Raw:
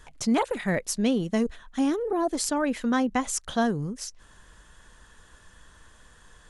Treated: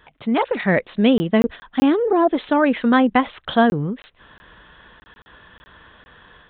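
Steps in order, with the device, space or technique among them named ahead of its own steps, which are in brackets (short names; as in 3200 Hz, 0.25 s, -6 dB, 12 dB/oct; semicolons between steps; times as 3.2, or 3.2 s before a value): call with lost packets (HPF 150 Hz 6 dB/oct; downsampling 8000 Hz; AGC gain up to 7 dB; packet loss packets of 20 ms random); gain +3 dB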